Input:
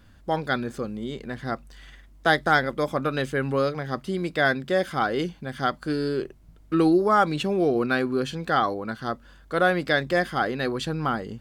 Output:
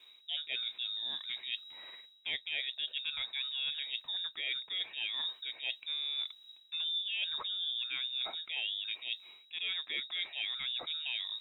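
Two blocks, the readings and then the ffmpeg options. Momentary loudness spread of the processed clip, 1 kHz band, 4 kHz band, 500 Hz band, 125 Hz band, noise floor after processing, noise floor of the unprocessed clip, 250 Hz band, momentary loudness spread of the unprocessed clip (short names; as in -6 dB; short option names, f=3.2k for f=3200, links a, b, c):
6 LU, -29.5 dB, +4.5 dB, -35.0 dB, under -40 dB, -61 dBFS, -52 dBFS, under -40 dB, 11 LU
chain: -af "lowpass=f=3.3k:t=q:w=0.5098,lowpass=f=3.3k:t=q:w=0.6013,lowpass=f=3.3k:t=q:w=0.9,lowpass=f=3.3k:t=q:w=2.563,afreqshift=-3900,acrusher=bits=11:mix=0:aa=0.000001,areverse,acompressor=threshold=-31dB:ratio=6,areverse,volume=-3.5dB"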